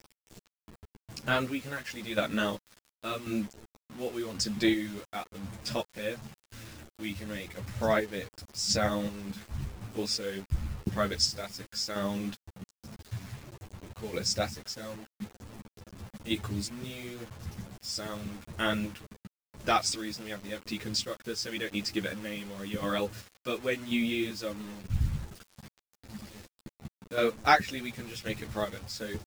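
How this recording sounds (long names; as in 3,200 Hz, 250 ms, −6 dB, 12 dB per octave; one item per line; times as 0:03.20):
chopped level 0.92 Hz, depth 60%, duty 35%
a quantiser's noise floor 8 bits, dither none
a shimmering, thickened sound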